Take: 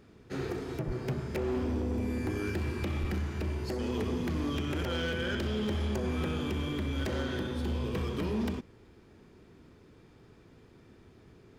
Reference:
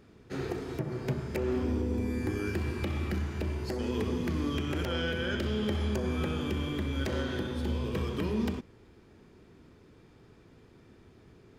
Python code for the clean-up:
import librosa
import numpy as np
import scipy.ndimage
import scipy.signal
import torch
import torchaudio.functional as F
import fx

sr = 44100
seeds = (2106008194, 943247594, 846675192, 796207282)

y = fx.fix_declip(x, sr, threshold_db=-27.0)
y = fx.highpass(y, sr, hz=140.0, slope=24, at=(0.86, 0.98), fade=0.02)
y = fx.highpass(y, sr, hz=140.0, slope=24, at=(3.0, 3.12), fade=0.02)